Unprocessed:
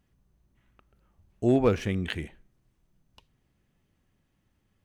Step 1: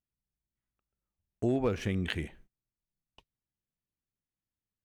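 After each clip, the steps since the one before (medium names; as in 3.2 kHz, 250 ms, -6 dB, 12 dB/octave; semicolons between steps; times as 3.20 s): gate -55 dBFS, range -25 dB; compression 3:1, threshold -27 dBFS, peak gain reduction 8 dB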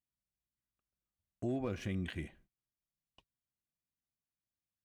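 peak limiter -22 dBFS, peak gain reduction 7.5 dB; comb of notches 440 Hz; trim -5 dB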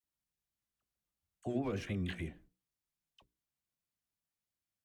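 hum notches 60/120/180/240/300/360/420/480 Hz; vibrato 6.4 Hz 94 cents; phase dispersion lows, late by 40 ms, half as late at 910 Hz; trim +1 dB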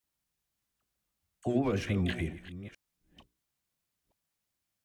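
chunks repeated in reverse 458 ms, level -14 dB; trim +7 dB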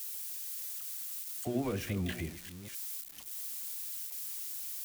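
zero-crossing glitches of -31 dBFS; trim -4.5 dB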